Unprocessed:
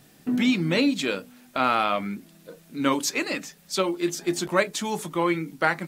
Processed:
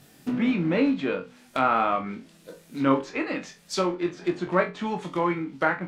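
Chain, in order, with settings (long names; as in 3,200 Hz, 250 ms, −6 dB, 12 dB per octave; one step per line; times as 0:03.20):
floating-point word with a short mantissa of 2 bits
treble cut that deepens with the level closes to 1,700 Hz, closed at −23 dBFS
flutter between parallel walls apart 3.8 metres, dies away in 0.23 s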